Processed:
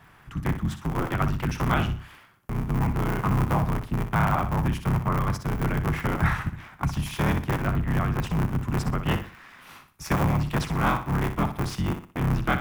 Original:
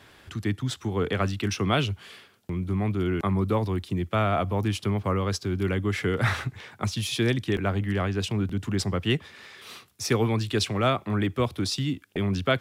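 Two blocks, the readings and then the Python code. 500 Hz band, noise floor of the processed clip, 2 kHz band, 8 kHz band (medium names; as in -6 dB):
-5.0 dB, -53 dBFS, +1.0 dB, -5.0 dB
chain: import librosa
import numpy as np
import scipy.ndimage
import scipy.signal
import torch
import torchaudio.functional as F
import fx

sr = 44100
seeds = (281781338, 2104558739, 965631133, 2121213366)

y = fx.cycle_switch(x, sr, every=3, mode='inverted')
y = fx.graphic_eq(y, sr, hz=(125, 500, 1000, 4000, 8000), db=(5, -9, 5, -11, -6))
y = fx.room_flutter(y, sr, wall_m=10.5, rt60_s=0.38)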